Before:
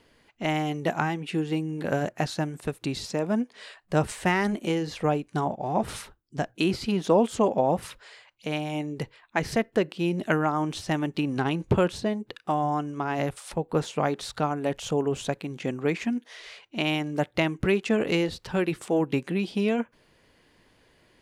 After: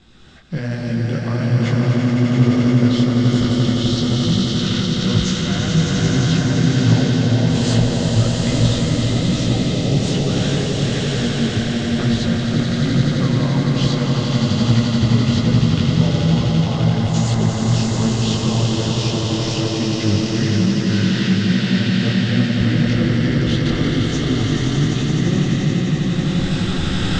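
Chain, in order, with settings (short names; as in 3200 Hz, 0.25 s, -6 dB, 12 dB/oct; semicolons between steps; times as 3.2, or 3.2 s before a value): recorder AGC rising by 33 dB/s; varispeed -22%; LPF 7400 Hz 24 dB/oct; bell 3900 Hz +9 dB 1.5 oct; reverse; compressor 10:1, threshold -29 dBFS, peak gain reduction 15.5 dB; reverse; tone controls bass +12 dB, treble +4 dB; notch 2300 Hz, Q 7.8; on a send: swelling echo 86 ms, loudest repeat 8, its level -5 dB; on the sum: detuned doubles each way 40 cents; gain +6 dB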